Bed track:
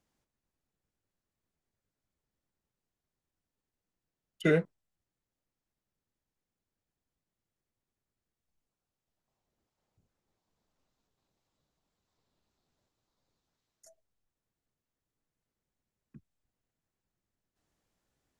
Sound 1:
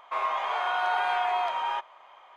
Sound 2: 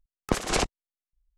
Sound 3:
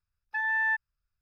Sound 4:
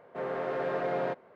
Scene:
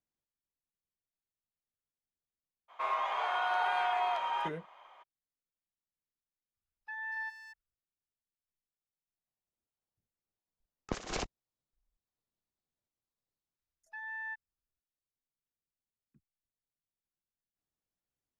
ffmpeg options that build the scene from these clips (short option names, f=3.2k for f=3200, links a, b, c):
-filter_complex "[3:a]asplit=2[a][b];[0:a]volume=-16dB[c];[a]asplit=2[d][e];[e]adelay=230,highpass=300,lowpass=3.4k,asoftclip=type=hard:threshold=-29dB,volume=-9dB[f];[d][f]amix=inputs=2:normalize=0[g];[2:a]aresample=16000,aresample=44100[h];[1:a]atrim=end=2.36,asetpts=PTS-STARTPTS,volume=-4.5dB,afade=t=in:d=0.02,afade=t=out:st=2.34:d=0.02,adelay=2680[i];[g]atrim=end=1.21,asetpts=PTS-STARTPTS,volume=-12dB,afade=t=in:d=0.004:c=hsin,afade=t=out:st=1.206:d=0.004:c=hsin,adelay=6540[j];[h]atrim=end=1.37,asetpts=PTS-STARTPTS,volume=-11.5dB,afade=t=in:d=0.004:c=hsin,afade=t=out:st=1.366:d=0.004:c=hsin,adelay=10600[k];[b]atrim=end=1.21,asetpts=PTS-STARTPTS,volume=-14dB,afade=t=in:d=0.004:c=hsin,afade=t=out:st=1.206:d=0.004:c=hsin,adelay=13590[l];[c][i][j][k][l]amix=inputs=5:normalize=0"